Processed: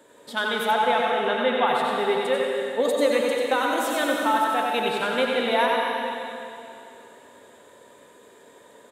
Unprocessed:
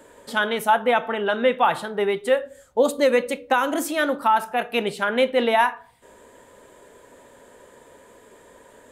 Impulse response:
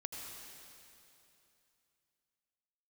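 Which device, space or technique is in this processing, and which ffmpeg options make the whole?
PA in a hall: -filter_complex "[0:a]highpass=130,equalizer=f=3700:t=o:w=0.21:g=8,aecho=1:1:93:0.531[s0];[1:a]atrim=start_sample=2205[s1];[s0][s1]afir=irnorm=-1:irlink=0,asettb=1/sr,asplit=3[s2][s3][s4];[s2]atrim=end=0.714[s5];[s3]atrim=start=0.71:end=1.67,asetpts=PTS-STARTPTS,afade=t=in:d=0.004:c=qsin,afade=t=out:st=0.956:d=0.004:c=qsin,lowpass=7300[s6];[s4]atrim=start=1.666[s7];[s5][s6]acrossfade=d=0.004:c1=hsin:c2=qsin[s8];[s8][s7]acrossfade=d=0.004:c1=qsin:c2=hsin,volume=0.891"

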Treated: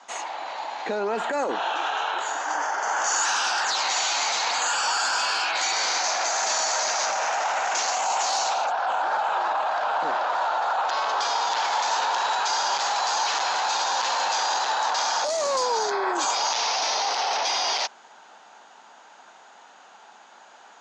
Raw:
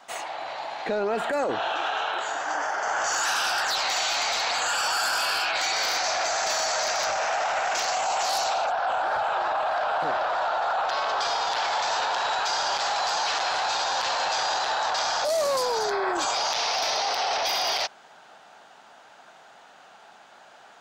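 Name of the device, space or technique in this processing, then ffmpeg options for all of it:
television speaker: -af "highpass=f=190:w=0.5412,highpass=f=190:w=1.3066,equalizer=f=650:t=q:w=4:g=-3,equalizer=f=940:t=q:w=4:g=5,equalizer=f=6700:t=q:w=4:g=8,lowpass=f=7400:w=0.5412,lowpass=f=7400:w=1.3066"

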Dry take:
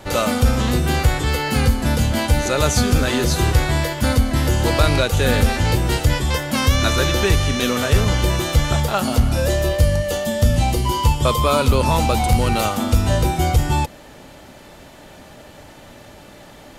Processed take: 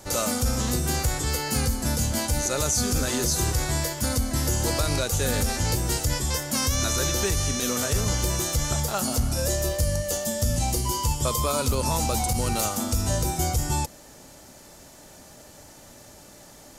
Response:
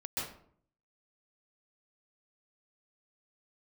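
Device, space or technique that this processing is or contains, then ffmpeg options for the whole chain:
over-bright horn tweeter: -af "highshelf=f=4400:t=q:w=1.5:g=9.5,alimiter=limit=0.473:level=0:latency=1:release=50,volume=0.422"

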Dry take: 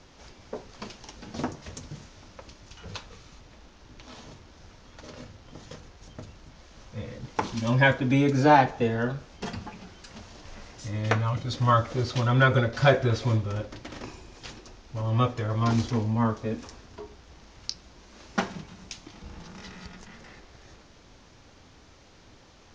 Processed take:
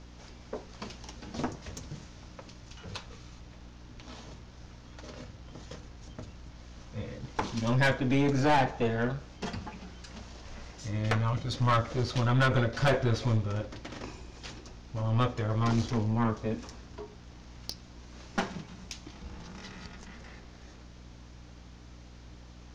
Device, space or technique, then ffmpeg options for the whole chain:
valve amplifier with mains hum: -af "aeval=exprs='(tanh(10*val(0)+0.45)-tanh(0.45))/10':c=same,aeval=exprs='val(0)+0.00355*(sin(2*PI*60*n/s)+sin(2*PI*2*60*n/s)/2+sin(2*PI*3*60*n/s)/3+sin(2*PI*4*60*n/s)/4+sin(2*PI*5*60*n/s)/5)':c=same"

